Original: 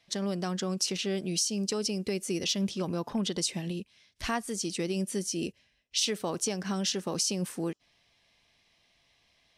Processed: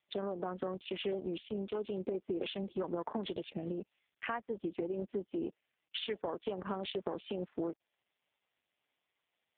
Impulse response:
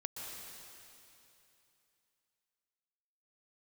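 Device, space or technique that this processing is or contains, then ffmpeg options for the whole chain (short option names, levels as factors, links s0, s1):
voicemail: -filter_complex "[0:a]asplit=3[s0][s1][s2];[s0]afade=t=out:st=4.33:d=0.02[s3];[s1]lowpass=6600,afade=t=in:st=4.33:d=0.02,afade=t=out:st=6.08:d=0.02[s4];[s2]afade=t=in:st=6.08:d=0.02[s5];[s3][s4][s5]amix=inputs=3:normalize=0,afwtdn=0.0112,highpass=370,lowpass=3000,acompressor=threshold=0.0112:ratio=8,volume=2.24" -ar 8000 -c:a libopencore_amrnb -b:a 4750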